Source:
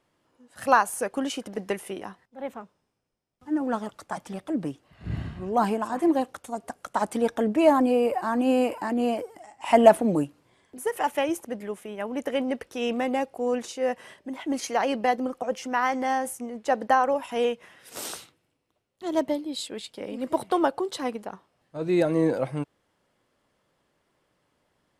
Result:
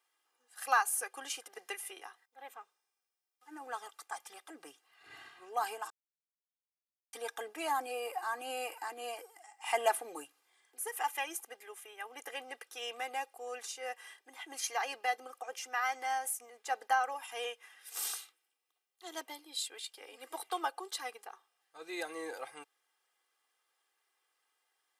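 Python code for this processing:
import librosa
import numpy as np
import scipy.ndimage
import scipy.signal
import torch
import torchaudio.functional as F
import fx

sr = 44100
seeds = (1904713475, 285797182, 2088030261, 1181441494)

y = fx.edit(x, sr, fx.silence(start_s=5.9, length_s=1.23), tone=tone)
y = scipy.signal.sosfilt(scipy.signal.butter(2, 1000.0, 'highpass', fs=sr, output='sos'), y)
y = fx.high_shelf(y, sr, hz=9700.0, db=11.5)
y = y + 0.81 * np.pad(y, (int(2.5 * sr / 1000.0), 0))[:len(y)]
y = y * librosa.db_to_amplitude(-7.5)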